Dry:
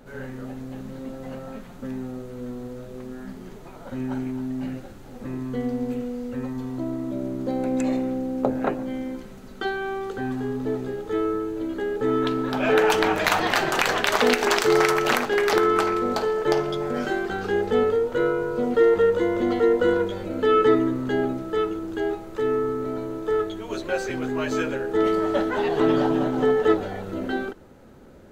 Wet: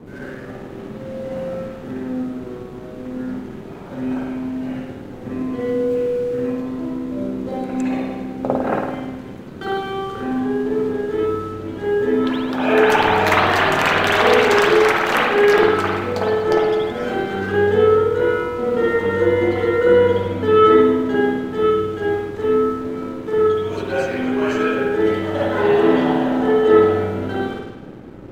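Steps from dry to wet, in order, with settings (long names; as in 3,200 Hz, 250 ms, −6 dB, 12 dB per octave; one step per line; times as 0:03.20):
spring reverb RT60 1.1 s, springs 51 ms, chirp 75 ms, DRR −8 dB
noise in a band 91–420 Hz −34 dBFS
dead-zone distortion −43 dBFS
level −2 dB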